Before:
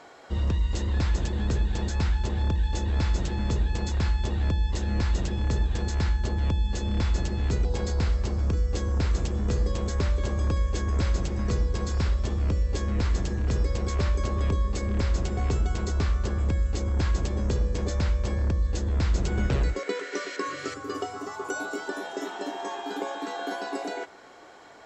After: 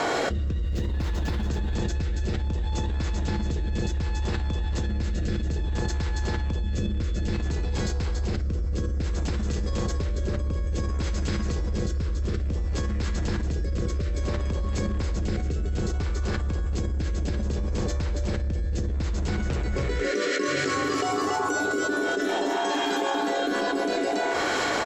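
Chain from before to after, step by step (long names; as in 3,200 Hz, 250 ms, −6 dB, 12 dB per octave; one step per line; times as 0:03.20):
0:00.64–0:01.46: running median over 5 samples
in parallel at −9.5 dB: hard clipping −30 dBFS, distortion −7 dB
on the sum: single-tap delay 281 ms −3.5 dB
rotating-speaker cabinet horn 0.6 Hz
on a send at −12 dB: convolution reverb RT60 0.30 s, pre-delay 4 ms
on the sum: envelope flattener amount 100%
level −7 dB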